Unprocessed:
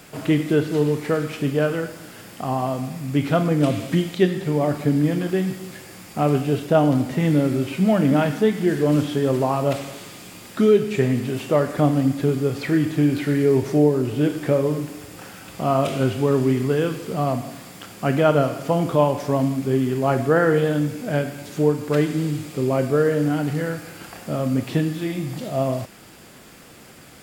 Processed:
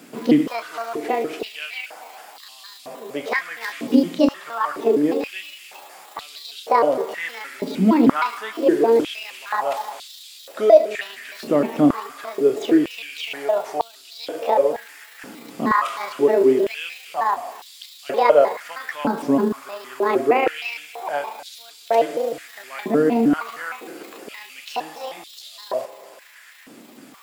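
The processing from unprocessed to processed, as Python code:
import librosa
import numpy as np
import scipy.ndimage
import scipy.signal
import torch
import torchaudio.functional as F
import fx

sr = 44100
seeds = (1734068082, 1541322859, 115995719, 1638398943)

y = fx.pitch_trill(x, sr, semitones=7.5, every_ms=155)
y = fx.rev_spring(y, sr, rt60_s=3.4, pass_ms=(45,), chirp_ms=60, drr_db=19.0)
y = fx.filter_held_highpass(y, sr, hz=2.1, low_hz=250.0, high_hz=3800.0)
y = y * 10.0 ** (-2.5 / 20.0)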